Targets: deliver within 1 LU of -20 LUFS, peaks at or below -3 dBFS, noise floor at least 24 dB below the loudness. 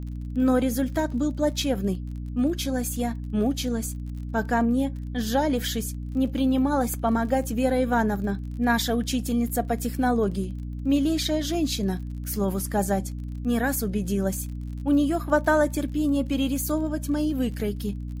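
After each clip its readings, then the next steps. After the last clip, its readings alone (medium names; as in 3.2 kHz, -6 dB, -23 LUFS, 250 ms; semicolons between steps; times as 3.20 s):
tick rate 40 per s; hum 60 Hz; highest harmonic 300 Hz; hum level -30 dBFS; loudness -25.5 LUFS; peak level -8.0 dBFS; loudness target -20.0 LUFS
-> de-click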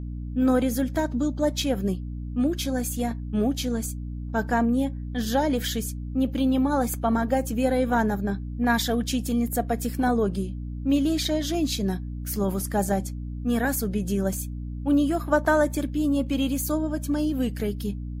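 tick rate 0 per s; hum 60 Hz; highest harmonic 300 Hz; hum level -30 dBFS
-> de-hum 60 Hz, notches 5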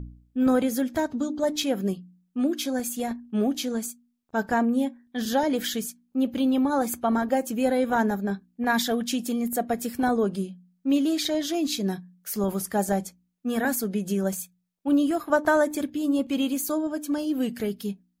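hum not found; loudness -26.5 LUFS; peak level -8.5 dBFS; loudness target -20.0 LUFS
-> trim +6.5 dB; peak limiter -3 dBFS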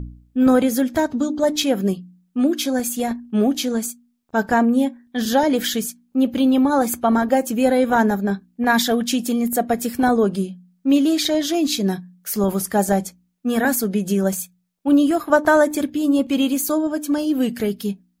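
loudness -20.0 LUFS; peak level -3.0 dBFS; noise floor -65 dBFS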